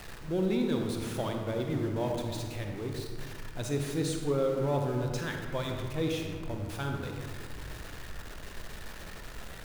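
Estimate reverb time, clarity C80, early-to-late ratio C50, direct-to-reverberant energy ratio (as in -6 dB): 1.9 s, 4.0 dB, 2.5 dB, 2.0 dB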